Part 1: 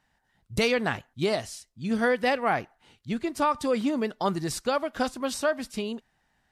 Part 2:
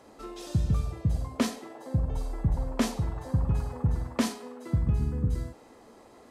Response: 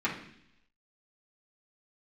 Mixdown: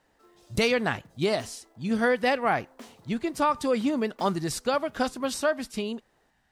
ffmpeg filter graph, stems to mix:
-filter_complex "[0:a]volume=0.5dB[a];[1:a]highpass=280,acrusher=bits=4:mode=log:mix=0:aa=0.000001,volume=-16.5dB[b];[a][b]amix=inputs=2:normalize=0"

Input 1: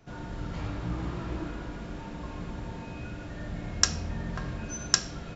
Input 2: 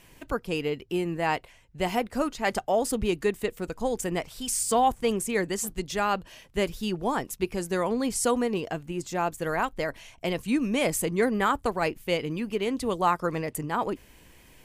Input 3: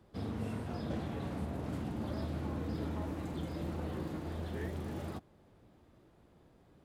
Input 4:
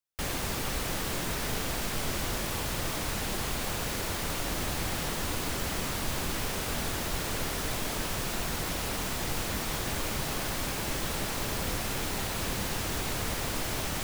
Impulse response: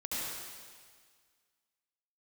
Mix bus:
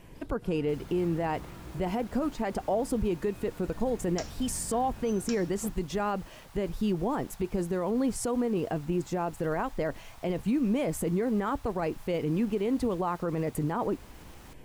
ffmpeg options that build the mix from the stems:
-filter_complex "[0:a]adelay=350,volume=-10.5dB[a];[1:a]tiltshelf=f=1.3k:g=7,acompressor=threshold=-23dB:ratio=6,volume=0dB,asplit=2[b][c];[2:a]crystalizer=i=5:c=0,volume=-19.5dB[d];[3:a]alimiter=limit=-24dB:level=0:latency=1:release=175,highpass=f=820:t=q:w=1.9,adelay=500,volume=-20dB[e];[c]apad=whole_len=301837[f];[d][f]sidechaincompress=threshold=-26dB:ratio=8:attack=24:release=321[g];[a][b][g][e]amix=inputs=4:normalize=0,alimiter=limit=-20.5dB:level=0:latency=1:release=13"

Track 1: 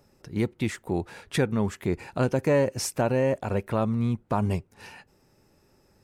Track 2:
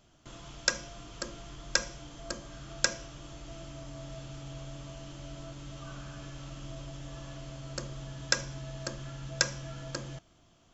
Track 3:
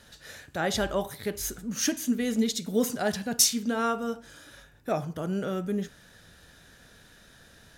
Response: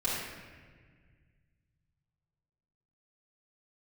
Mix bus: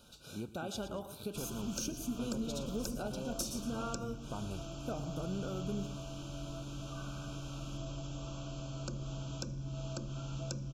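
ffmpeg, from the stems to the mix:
-filter_complex "[0:a]highshelf=f=9.5k:g=10,volume=-15.5dB,asplit=2[a][b];[b]volume=-19.5dB[c];[1:a]acrossover=split=350[d][e];[e]acompressor=threshold=-43dB:ratio=10[f];[d][f]amix=inputs=2:normalize=0,adelay=1100,volume=0dB[g];[2:a]volume=-5.5dB,asplit=2[h][i];[i]volume=-20dB[j];[a][h]amix=inputs=2:normalize=0,acompressor=threshold=-38dB:ratio=6,volume=0dB[k];[c][j]amix=inputs=2:normalize=0,aecho=0:1:114|228|342|456|570:1|0.33|0.109|0.0359|0.0119[l];[g][k][l]amix=inputs=3:normalize=0,asuperstop=centerf=1900:order=20:qfactor=2.5,equalizer=f=230:w=1.3:g=3"

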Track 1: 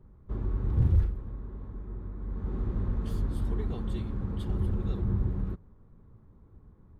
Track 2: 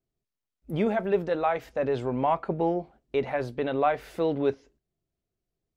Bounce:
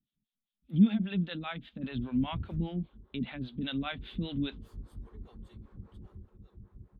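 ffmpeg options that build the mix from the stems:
-filter_complex "[0:a]adelay=1550,volume=-12dB,afade=t=out:st=6.01:d=0.23:silence=0.398107[a];[1:a]firequalizer=gain_entry='entry(110,0);entry(210,14);entry(410,-15);entry(840,-14);entry(1400,-4);entry(2000,-3);entry(3500,14);entry(5400,-21)':delay=0.05:min_phase=1,volume=-1.5dB[b];[a][b]amix=inputs=2:normalize=0,acrossover=split=420[c][d];[c]aeval=exprs='val(0)*(1-1/2+1/2*cos(2*PI*5*n/s))':c=same[e];[d]aeval=exprs='val(0)*(1-1/2-1/2*cos(2*PI*5*n/s))':c=same[f];[e][f]amix=inputs=2:normalize=0"

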